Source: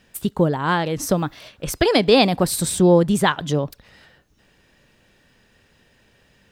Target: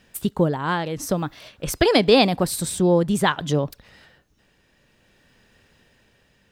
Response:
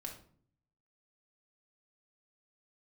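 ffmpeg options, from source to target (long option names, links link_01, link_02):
-af "tremolo=f=0.54:d=0.38"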